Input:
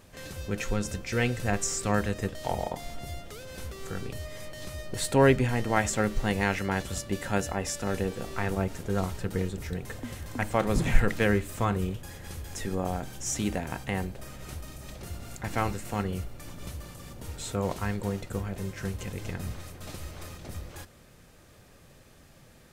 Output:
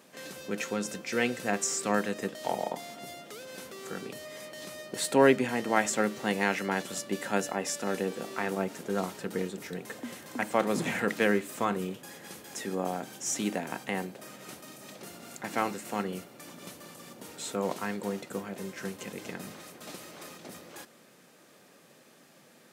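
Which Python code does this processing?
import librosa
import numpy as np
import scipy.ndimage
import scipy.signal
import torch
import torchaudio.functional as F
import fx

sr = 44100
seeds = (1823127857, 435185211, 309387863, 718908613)

y = scipy.signal.sosfilt(scipy.signal.butter(4, 190.0, 'highpass', fs=sr, output='sos'), x)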